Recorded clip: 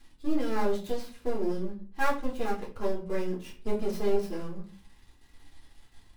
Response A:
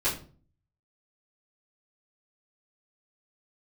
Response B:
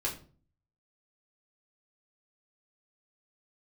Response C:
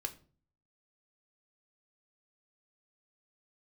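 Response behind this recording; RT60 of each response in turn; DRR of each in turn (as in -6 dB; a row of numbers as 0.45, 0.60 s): B; 0.40, 0.40, 0.40 s; -13.5, -4.0, 6.0 dB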